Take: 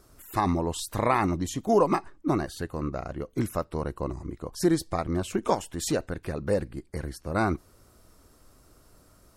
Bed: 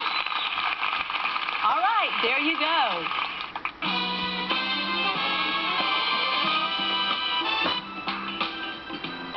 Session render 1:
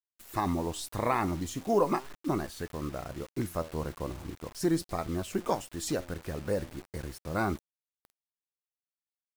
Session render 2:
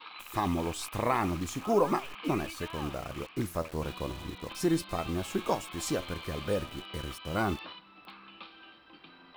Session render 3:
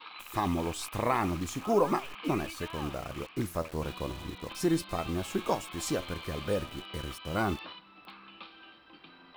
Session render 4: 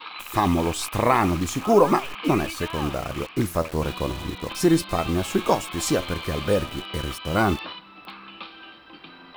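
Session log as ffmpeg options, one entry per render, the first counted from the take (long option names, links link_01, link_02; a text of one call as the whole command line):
ffmpeg -i in.wav -af "flanger=delay=4.5:depth=8.3:regen=83:speed=0.39:shape=sinusoidal,acrusher=bits=7:mix=0:aa=0.000001" out.wav
ffmpeg -i in.wav -i bed.wav -filter_complex "[1:a]volume=-20dB[link_01];[0:a][link_01]amix=inputs=2:normalize=0" out.wav
ffmpeg -i in.wav -af anull out.wav
ffmpeg -i in.wav -af "volume=9dB" out.wav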